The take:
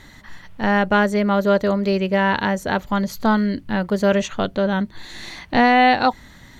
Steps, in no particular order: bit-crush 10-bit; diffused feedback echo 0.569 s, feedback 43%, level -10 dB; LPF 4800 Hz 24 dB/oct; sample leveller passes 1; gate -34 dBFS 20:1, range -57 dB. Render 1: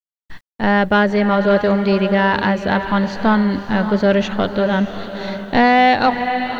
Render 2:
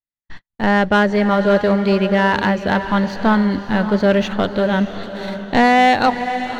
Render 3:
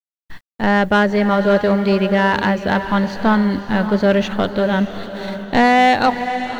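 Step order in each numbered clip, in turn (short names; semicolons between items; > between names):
gate > diffused feedback echo > sample leveller > LPF > bit-crush; bit-crush > LPF > gate > sample leveller > diffused feedback echo; LPF > gate > bit-crush > sample leveller > diffused feedback echo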